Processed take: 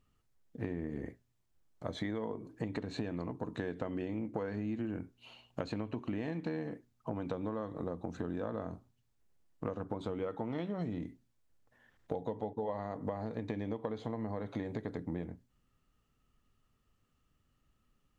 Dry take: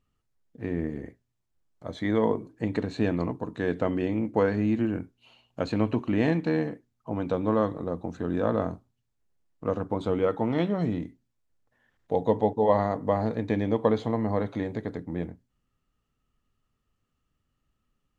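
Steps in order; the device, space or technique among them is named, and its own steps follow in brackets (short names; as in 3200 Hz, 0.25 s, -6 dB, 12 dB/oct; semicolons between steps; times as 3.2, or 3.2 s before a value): serial compression, leveller first (compressor 2:1, threshold -29 dBFS, peak gain reduction 7.5 dB; compressor 6:1, threshold -36 dBFS, peak gain reduction 12.5 dB); gain +2 dB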